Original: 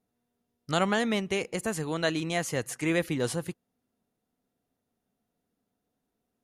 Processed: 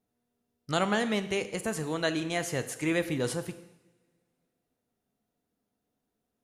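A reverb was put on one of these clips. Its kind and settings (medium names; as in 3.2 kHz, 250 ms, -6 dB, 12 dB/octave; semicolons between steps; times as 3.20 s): two-slope reverb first 0.89 s, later 2.8 s, from -26 dB, DRR 10 dB; trim -1.5 dB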